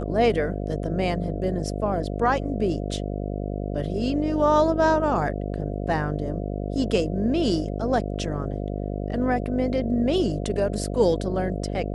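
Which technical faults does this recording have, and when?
buzz 50 Hz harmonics 14 -29 dBFS

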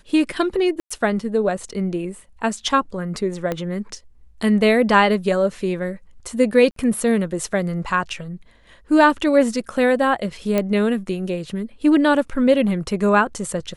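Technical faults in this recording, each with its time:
0.80–0.91 s: dropout 105 ms
3.52 s: pop -11 dBFS
6.71–6.76 s: dropout 53 ms
10.58 s: pop -7 dBFS

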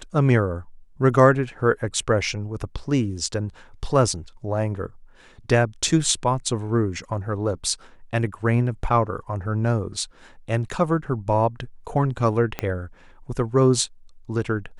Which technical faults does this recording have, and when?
12.59 s: pop -11 dBFS

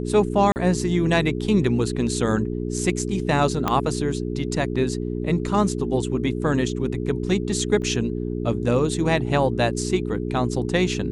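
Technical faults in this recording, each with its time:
hum 60 Hz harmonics 7 -27 dBFS
0.52–0.56 s: dropout 39 ms
3.68 s: pop -8 dBFS
7.82 s: dropout 3.2 ms

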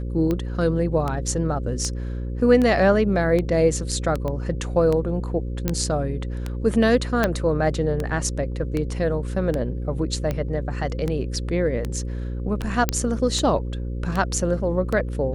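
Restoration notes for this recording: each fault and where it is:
buzz 60 Hz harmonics 9 -28 dBFS
tick 78 rpm -13 dBFS
4.28 s: pop -17 dBFS
5.68 s: pop -8 dBFS
7.24 s: pop -6 dBFS
12.89 s: pop -4 dBFS

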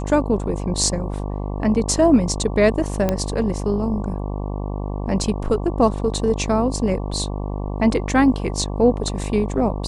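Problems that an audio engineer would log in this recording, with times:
buzz 50 Hz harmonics 23 -26 dBFS
3.09 s: pop -7 dBFS

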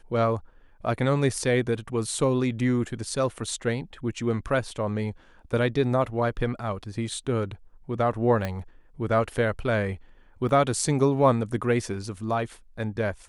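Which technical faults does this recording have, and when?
8.45 s: pop -15 dBFS
10.49 s: dropout 2.8 ms

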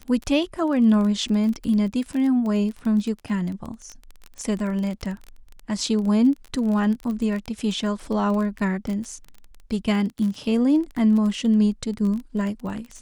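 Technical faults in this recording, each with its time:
crackle 21 per s -28 dBFS

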